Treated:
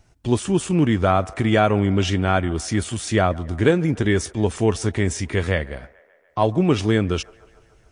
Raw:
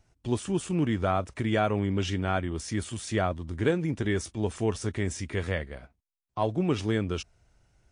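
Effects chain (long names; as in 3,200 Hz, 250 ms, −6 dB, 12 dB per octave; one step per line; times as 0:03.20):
delay with a band-pass on its return 145 ms, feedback 65%, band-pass 1,000 Hz, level −21 dB
level +8.5 dB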